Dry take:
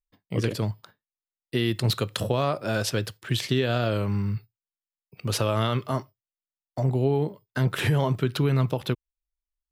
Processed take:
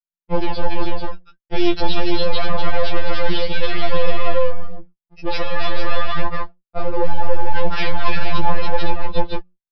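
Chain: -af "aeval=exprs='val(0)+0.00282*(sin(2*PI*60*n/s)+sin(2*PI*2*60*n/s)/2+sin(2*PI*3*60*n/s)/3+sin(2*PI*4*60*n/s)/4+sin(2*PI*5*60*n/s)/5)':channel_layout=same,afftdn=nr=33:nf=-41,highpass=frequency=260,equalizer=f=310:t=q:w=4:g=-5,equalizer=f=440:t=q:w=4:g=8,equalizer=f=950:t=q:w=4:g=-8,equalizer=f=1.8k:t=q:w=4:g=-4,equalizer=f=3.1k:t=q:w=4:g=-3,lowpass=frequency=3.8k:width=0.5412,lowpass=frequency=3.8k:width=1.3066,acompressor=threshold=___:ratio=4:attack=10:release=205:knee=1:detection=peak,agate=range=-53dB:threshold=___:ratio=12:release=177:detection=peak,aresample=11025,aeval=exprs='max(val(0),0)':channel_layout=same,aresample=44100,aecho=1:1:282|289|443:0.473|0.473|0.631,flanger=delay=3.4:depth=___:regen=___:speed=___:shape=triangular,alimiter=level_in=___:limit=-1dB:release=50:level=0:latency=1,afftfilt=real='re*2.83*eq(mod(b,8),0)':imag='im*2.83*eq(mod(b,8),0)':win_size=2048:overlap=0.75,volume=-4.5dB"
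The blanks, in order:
-25dB, -59dB, 7.3, 43, 0.45, 26dB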